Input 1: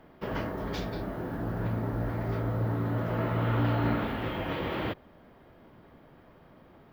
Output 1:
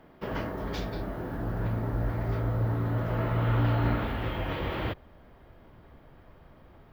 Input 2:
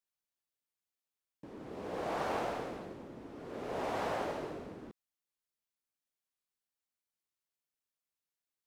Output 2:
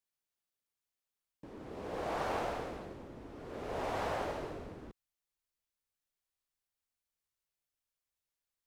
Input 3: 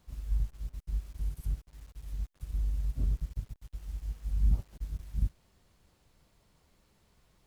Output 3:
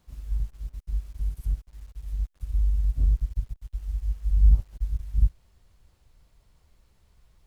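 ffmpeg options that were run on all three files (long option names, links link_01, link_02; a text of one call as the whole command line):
ffmpeg -i in.wav -af "asubboost=boost=3.5:cutoff=100" out.wav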